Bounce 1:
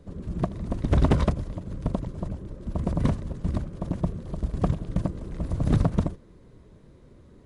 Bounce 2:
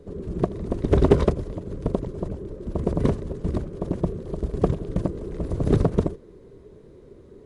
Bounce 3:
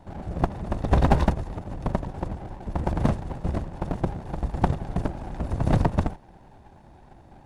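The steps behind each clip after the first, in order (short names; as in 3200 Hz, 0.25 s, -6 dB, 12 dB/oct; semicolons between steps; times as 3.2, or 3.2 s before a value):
bell 410 Hz +13.5 dB 0.63 oct
minimum comb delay 1.1 ms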